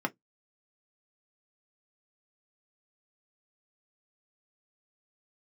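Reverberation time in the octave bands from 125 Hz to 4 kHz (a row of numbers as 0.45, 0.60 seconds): 0.15, 0.15, 0.15, 0.10, 0.10, 0.10 seconds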